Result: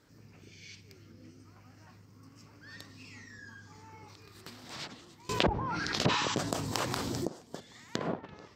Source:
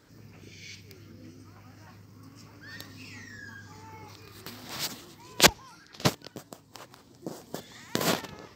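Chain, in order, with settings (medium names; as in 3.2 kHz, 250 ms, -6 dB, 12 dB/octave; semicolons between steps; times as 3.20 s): low-pass that closes with the level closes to 850 Hz, closed at -24 dBFS; 6.11–6.32 s: spectral replace 820–8100 Hz both; 5.29–7.27 s: level flattener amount 70%; trim -5 dB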